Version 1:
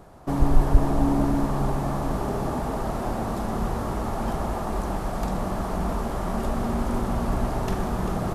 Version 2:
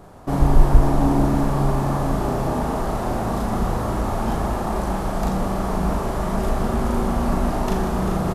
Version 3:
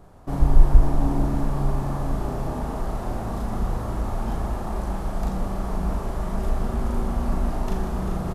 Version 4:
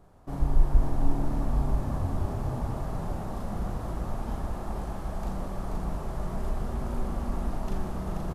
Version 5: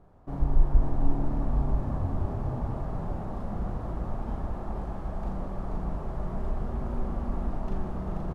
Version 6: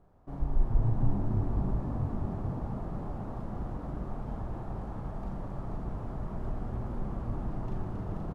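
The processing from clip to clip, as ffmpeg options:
ffmpeg -i in.wav -filter_complex "[0:a]asplit=2[link_01][link_02];[link_02]adelay=37,volume=-2.5dB[link_03];[link_01][link_03]amix=inputs=2:normalize=0,volume=2.5dB" out.wav
ffmpeg -i in.wav -af "lowshelf=frequency=87:gain=9.5,volume=-8dB" out.wav
ffmpeg -i in.wav -filter_complex "[0:a]asplit=9[link_01][link_02][link_03][link_04][link_05][link_06][link_07][link_08][link_09];[link_02]adelay=482,afreqshift=-38,volume=-5dB[link_10];[link_03]adelay=964,afreqshift=-76,volume=-9.9dB[link_11];[link_04]adelay=1446,afreqshift=-114,volume=-14.8dB[link_12];[link_05]adelay=1928,afreqshift=-152,volume=-19.6dB[link_13];[link_06]adelay=2410,afreqshift=-190,volume=-24.5dB[link_14];[link_07]adelay=2892,afreqshift=-228,volume=-29.4dB[link_15];[link_08]adelay=3374,afreqshift=-266,volume=-34.3dB[link_16];[link_09]adelay=3856,afreqshift=-304,volume=-39.2dB[link_17];[link_01][link_10][link_11][link_12][link_13][link_14][link_15][link_16][link_17]amix=inputs=9:normalize=0,volume=-7.5dB" out.wav
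ffmpeg -i in.wav -af "lowpass=frequency=1500:poles=1" out.wav
ffmpeg -i in.wav -filter_complex "[0:a]asplit=5[link_01][link_02][link_03][link_04][link_05];[link_02]adelay=271,afreqshift=88,volume=-6.5dB[link_06];[link_03]adelay=542,afreqshift=176,volume=-15.6dB[link_07];[link_04]adelay=813,afreqshift=264,volume=-24.7dB[link_08];[link_05]adelay=1084,afreqshift=352,volume=-33.9dB[link_09];[link_01][link_06][link_07][link_08][link_09]amix=inputs=5:normalize=0,volume=-5.5dB" out.wav

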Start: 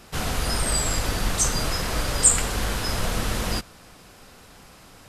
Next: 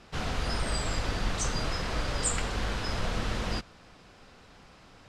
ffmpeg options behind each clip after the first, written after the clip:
ffmpeg -i in.wav -af "lowpass=5000,volume=-5dB" out.wav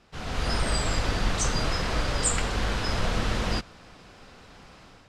ffmpeg -i in.wav -af "dynaudnorm=framelen=130:gausssize=5:maxgain=10.5dB,volume=-6dB" out.wav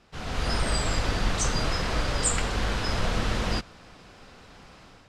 ffmpeg -i in.wav -af anull out.wav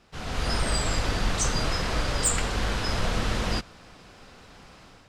ffmpeg -i in.wav -af "highshelf=frequency=8400:gain=4.5,asoftclip=type=hard:threshold=-15.5dB" out.wav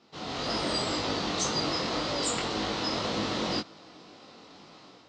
ffmpeg -i in.wav -af "flanger=delay=18.5:depth=4.3:speed=1.9,highpass=190,equalizer=frequency=310:width_type=q:width=4:gain=6,equalizer=frequency=1600:width_type=q:width=4:gain=-8,equalizer=frequency=2400:width_type=q:width=4:gain=-4,equalizer=frequency=4100:width_type=q:width=4:gain=4,lowpass=frequency=6300:width=0.5412,lowpass=frequency=6300:width=1.3066,volume=3dB" out.wav

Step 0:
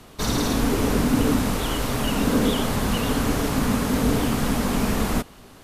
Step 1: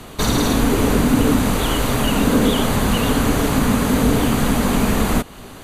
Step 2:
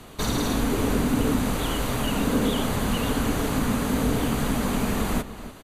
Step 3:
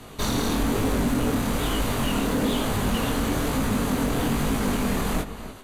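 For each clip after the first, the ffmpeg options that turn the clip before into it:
ffmpeg -i in.wav -filter_complex "[0:a]bandreject=frequency=5300:width=5.8,asplit=2[link_01][link_02];[link_02]acompressor=threshold=-29dB:ratio=6,volume=3dB[link_03];[link_01][link_03]amix=inputs=2:normalize=0,volume=2dB" out.wav
ffmpeg -i in.wav -filter_complex "[0:a]asplit=2[link_01][link_02];[link_02]adelay=291.5,volume=-13dB,highshelf=frequency=4000:gain=-6.56[link_03];[link_01][link_03]amix=inputs=2:normalize=0,volume=-7.5dB" out.wav
ffmpeg -i in.wav -af "asoftclip=type=hard:threshold=-21.5dB,flanger=delay=18.5:depth=7.3:speed=1.1,volume=4.5dB" out.wav

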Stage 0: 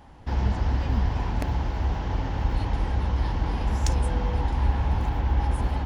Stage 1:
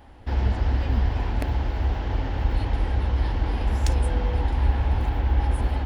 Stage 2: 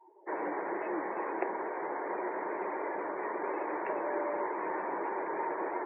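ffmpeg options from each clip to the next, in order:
ffmpeg -i in.wav -af "equalizer=frequency=160:width_type=o:width=0.67:gain=-9,equalizer=frequency=1000:width_type=o:width=0.67:gain=-5,equalizer=frequency=6300:width_type=o:width=0.67:gain=-7,volume=2.5dB" out.wav
ffmpeg -i in.wav -af "highpass=frequency=230:width_type=q:width=0.5412,highpass=frequency=230:width_type=q:width=1.307,lowpass=frequency=2200:width_type=q:width=0.5176,lowpass=frequency=2200:width_type=q:width=0.7071,lowpass=frequency=2200:width_type=q:width=1.932,afreqshift=95,afftdn=noise_reduction=29:noise_floor=-45" out.wav

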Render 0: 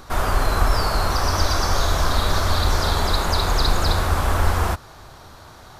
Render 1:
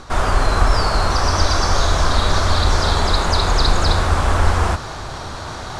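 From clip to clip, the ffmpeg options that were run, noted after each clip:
ffmpeg -i in.wav -af "areverse,acompressor=mode=upward:threshold=-21dB:ratio=2.5,areverse,lowpass=frequency=9000:width=0.5412,lowpass=frequency=9000:width=1.3066,volume=3.5dB" out.wav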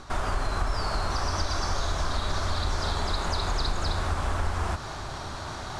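ffmpeg -i in.wav -af "bandreject=frequency=490:width=12,acompressor=threshold=-19dB:ratio=2.5,volume=-6.5dB" out.wav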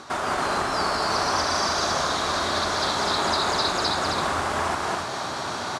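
ffmpeg -i in.wav -af "highpass=210,aecho=1:1:198.3|274.1:0.708|0.708,volume=5dB" out.wav

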